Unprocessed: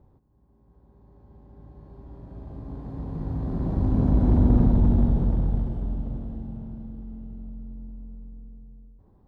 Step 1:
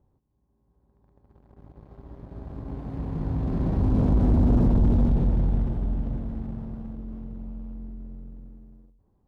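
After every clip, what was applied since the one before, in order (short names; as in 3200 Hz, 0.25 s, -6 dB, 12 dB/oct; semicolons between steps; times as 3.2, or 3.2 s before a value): sample leveller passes 2; gain -5.5 dB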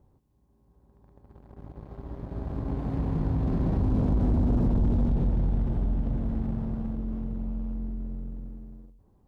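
compressor 3:1, threshold -29 dBFS, peak gain reduction 9.5 dB; gain +5 dB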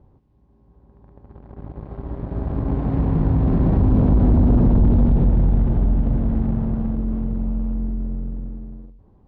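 air absorption 240 m; gain +9 dB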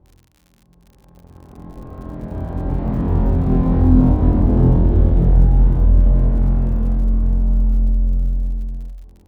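on a send: flutter echo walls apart 4 m, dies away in 0.67 s; on the sum: crackle 66/s -36 dBFS; gain -2 dB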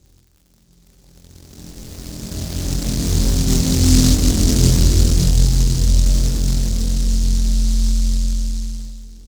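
feedback echo 0.208 s, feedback 55%, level -11 dB; noise-modulated delay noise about 5500 Hz, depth 0.29 ms; gain -1 dB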